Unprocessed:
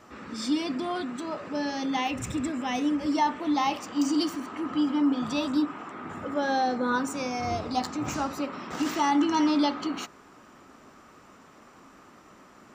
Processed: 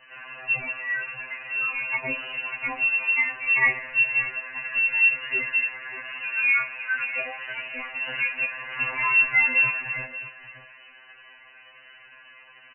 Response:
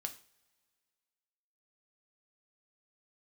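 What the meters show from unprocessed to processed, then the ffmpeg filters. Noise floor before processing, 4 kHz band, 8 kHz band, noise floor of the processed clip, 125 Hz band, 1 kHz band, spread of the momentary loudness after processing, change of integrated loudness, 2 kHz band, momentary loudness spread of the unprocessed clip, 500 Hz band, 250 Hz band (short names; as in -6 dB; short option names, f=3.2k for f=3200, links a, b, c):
-54 dBFS, -4.0 dB, under -40 dB, -51 dBFS, n/a, -8.0 dB, 14 LU, +5.0 dB, +16.0 dB, 10 LU, -9.5 dB, under -20 dB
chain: -filter_complex "[0:a]lowshelf=f=110:t=q:w=3:g=7,aecho=1:1:2.1:0.42,bandreject=f=107.3:t=h:w=4,bandreject=f=214.6:t=h:w=4,bandreject=f=321.9:t=h:w=4,bandreject=f=429.2:t=h:w=4,bandreject=f=536.5:t=h:w=4,bandreject=f=643.8:t=h:w=4,bandreject=f=751.1:t=h:w=4,bandreject=f=858.4:t=h:w=4,bandreject=f=965.7:t=h:w=4,bandreject=f=1.073k:t=h:w=4,bandreject=f=1.1803k:t=h:w=4,bandreject=f=1.2876k:t=h:w=4,bandreject=f=1.3949k:t=h:w=4,bandreject=f=1.5022k:t=h:w=4,bandreject=f=1.6095k:t=h:w=4,bandreject=f=1.7168k:t=h:w=4,bandreject=f=1.8241k:t=h:w=4,bandreject=f=1.9314k:t=h:w=4,bandreject=f=2.0387k:t=h:w=4,bandreject=f=2.146k:t=h:w=4,bandreject=f=2.2533k:t=h:w=4,bandreject=f=2.3606k:t=h:w=4,bandreject=f=2.4679k:t=h:w=4,bandreject=f=2.5752k:t=h:w=4,bandreject=f=2.6825k:t=h:w=4,bandreject=f=2.7898k:t=h:w=4,bandreject=f=2.8971k:t=h:w=4,bandreject=f=3.0044k:t=h:w=4,bandreject=f=3.1117k:t=h:w=4,bandreject=f=3.219k:t=h:w=4,lowpass=f=2.6k:t=q:w=0.5098,lowpass=f=2.6k:t=q:w=0.6013,lowpass=f=2.6k:t=q:w=0.9,lowpass=f=2.6k:t=q:w=2.563,afreqshift=-3000,asplit=2[a][b];[b]adelay=583.1,volume=-12dB,highshelf=f=4k:g=-13.1[c];[a][c]amix=inputs=2:normalize=0,asplit=2[d][e];[1:a]atrim=start_sample=2205,lowpass=1.8k[f];[e][f]afir=irnorm=-1:irlink=0,volume=-6dB[g];[d][g]amix=inputs=2:normalize=0,afftfilt=real='re*2.45*eq(mod(b,6),0)':imag='im*2.45*eq(mod(b,6),0)':win_size=2048:overlap=0.75,volume=5dB"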